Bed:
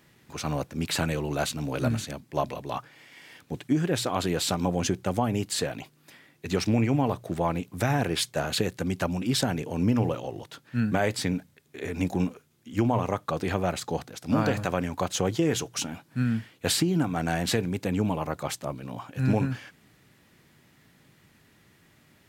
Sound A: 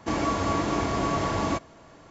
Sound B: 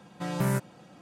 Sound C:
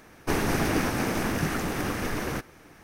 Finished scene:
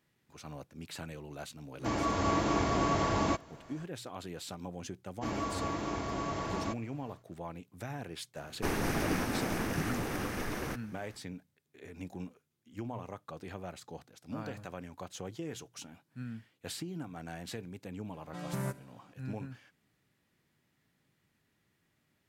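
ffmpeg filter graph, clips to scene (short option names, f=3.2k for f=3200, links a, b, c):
-filter_complex "[1:a]asplit=2[a][b];[0:a]volume=-16dB[c];[a]dynaudnorm=f=260:g=3:m=3dB[d];[2:a]aecho=1:1:68|136|204|272:0.106|0.054|0.0276|0.0141[e];[d]atrim=end=2.1,asetpts=PTS-STARTPTS,volume=-6dB,afade=t=in:d=0.05,afade=t=out:st=2.05:d=0.05,adelay=1780[f];[b]atrim=end=2.1,asetpts=PTS-STARTPTS,volume=-9.5dB,afade=t=in:d=0.1,afade=t=out:st=2:d=0.1,adelay=5150[g];[3:a]atrim=end=2.83,asetpts=PTS-STARTPTS,volume=-6.5dB,afade=t=in:d=0.004:c=hsin,afade=t=out:st=2.826:d=0.004:c=hsin,adelay=8350[h];[e]atrim=end=1.01,asetpts=PTS-STARTPTS,volume=-9.5dB,afade=t=in:d=0.004:c=hsin,afade=t=out:st=1.006:d=0.004:c=hsin,adelay=18130[i];[c][f][g][h][i]amix=inputs=5:normalize=0"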